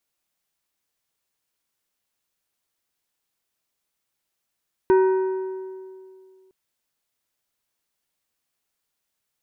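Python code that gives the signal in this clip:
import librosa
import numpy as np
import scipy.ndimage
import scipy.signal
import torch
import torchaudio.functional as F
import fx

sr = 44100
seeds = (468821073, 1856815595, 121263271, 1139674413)

y = fx.strike_metal(sr, length_s=1.61, level_db=-12.0, body='plate', hz=378.0, decay_s=2.27, tilt_db=9.5, modes=5)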